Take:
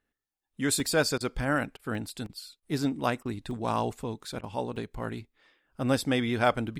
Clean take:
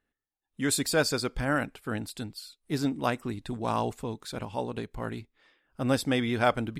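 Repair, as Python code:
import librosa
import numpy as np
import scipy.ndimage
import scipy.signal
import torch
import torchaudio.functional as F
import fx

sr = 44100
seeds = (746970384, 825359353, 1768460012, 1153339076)

y = fx.fix_interpolate(x, sr, at_s=(0.8, 1.22, 1.95, 2.26, 2.57, 3.51, 4.76), length_ms=1.6)
y = fx.fix_interpolate(y, sr, at_s=(1.18, 1.77, 2.27, 2.6, 3.23, 4.41), length_ms=23.0)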